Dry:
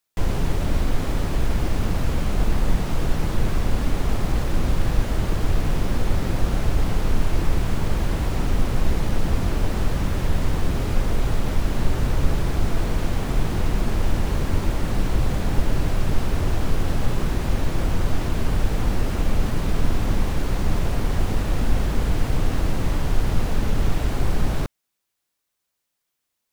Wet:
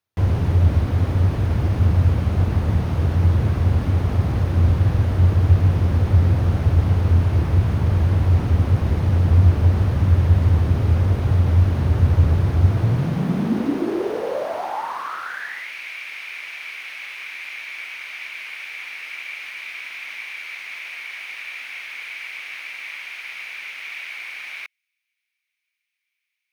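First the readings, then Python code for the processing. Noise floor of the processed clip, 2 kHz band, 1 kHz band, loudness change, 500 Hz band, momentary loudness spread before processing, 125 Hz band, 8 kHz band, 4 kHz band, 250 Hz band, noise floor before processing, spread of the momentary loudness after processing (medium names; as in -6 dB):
-80 dBFS, +4.5 dB, -0.5 dB, +6.0 dB, 0.0 dB, 1 LU, +7.5 dB, no reading, -2.0 dB, +0.5 dB, -79 dBFS, 14 LU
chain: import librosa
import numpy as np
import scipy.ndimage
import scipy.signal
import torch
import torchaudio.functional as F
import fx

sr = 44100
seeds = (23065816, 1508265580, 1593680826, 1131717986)

y = fx.high_shelf(x, sr, hz=3900.0, db=-10.5)
y = fx.notch(y, sr, hz=7500.0, q=6.8)
y = fx.filter_sweep_highpass(y, sr, from_hz=88.0, to_hz=2300.0, start_s=12.64, end_s=15.72, q=7.9)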